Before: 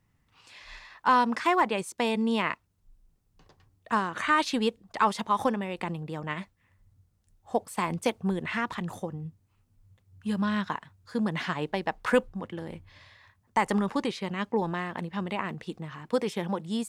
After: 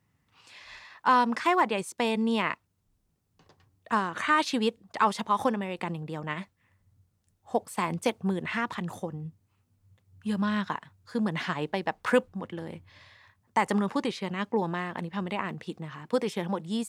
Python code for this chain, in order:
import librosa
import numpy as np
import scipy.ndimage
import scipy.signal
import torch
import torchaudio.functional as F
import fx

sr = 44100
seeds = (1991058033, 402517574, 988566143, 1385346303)

y = scipy.signal.sosfilt(scipy.signal.butter(2, 78.0, 'highpass', fs=sr, output='sos'), x)